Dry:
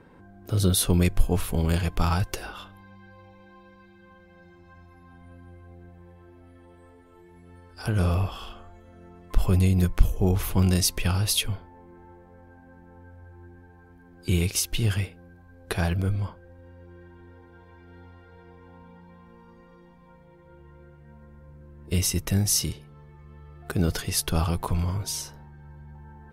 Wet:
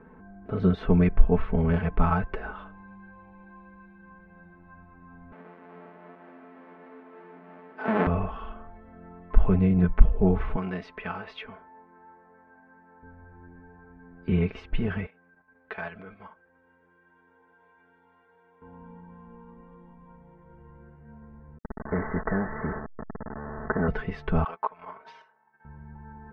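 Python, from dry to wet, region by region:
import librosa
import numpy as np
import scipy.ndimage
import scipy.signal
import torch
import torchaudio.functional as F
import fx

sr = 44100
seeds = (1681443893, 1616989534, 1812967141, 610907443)

y = fx.chain(x, sr, fx.halfwave_hold(),
    fx.highpass(hz=210.0, slope=24),
    fx.echo_stepped(ms=328, hz=790.0, octaves=1.4, feedback_pct=70, wet_db=-4.5), at=(5.32, 8.07))
y = fx.chain(y, sr, fx.highpass(hz=740.0, slope=6),
    fx.resample_bad(factor=3, down='filtered', up='hold'), at=(10.56, 13.03))
y = fx.chain(y, sr, fx.highpass(hz=980.0, slope=6),
    fx.level_steps(step_db=9),
    fx.high_shelf(hz=2100.0, db=6.0), at=(15.06, 18.62))
y = fx.chain(y, sr, fx.delta_hold(step_db=-40.0),
    fx.cheby1_lowpass(hz=1900.0, order=8),
    fx.spectral_comp(ratio=2.0), at=(21.58, 23.88))
y = fx.chain(y, sr, fx.highpass(hz=780.0, slope=12),
    fx.high_shelf(hz=6500.0, db=-8.5),
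    fx.transient(attack_db=6, sustain_db=-12), at=(24.44, 25.65))
y = scipy.signal.sosfilt(scipy.signal.butter(4, 2000.0, 'lowpass', fs=sr, output='sos'), y)
y = y + 0.74 * np.pad(y, (int(4.6 * sr / 1000.0), 0))[:len(y)]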